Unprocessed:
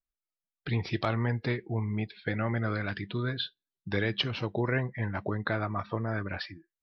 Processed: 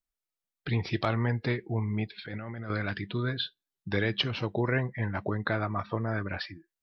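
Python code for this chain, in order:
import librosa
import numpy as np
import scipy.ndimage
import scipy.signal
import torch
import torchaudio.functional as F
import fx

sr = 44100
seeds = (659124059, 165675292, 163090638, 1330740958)

y = fx.over_compress(x, sr, threshold_db=-39.0, ratio=-1.0, at=(2.18, 2.7))
y = F.gain(torch.from_numpy(y), 1.0).numpy()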